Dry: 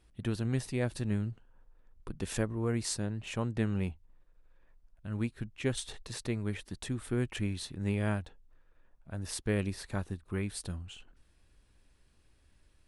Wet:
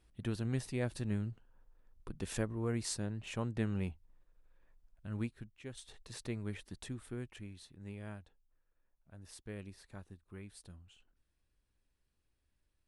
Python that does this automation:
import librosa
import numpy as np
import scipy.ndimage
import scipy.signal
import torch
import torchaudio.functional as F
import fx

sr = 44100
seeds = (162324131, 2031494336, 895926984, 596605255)

y = fx.gain(x, sr, db=fx.line((5.21, -4.0), (5.65, -16.0), (6.19, -6.0), (6.8, -6.0), (7.45, -15.0)))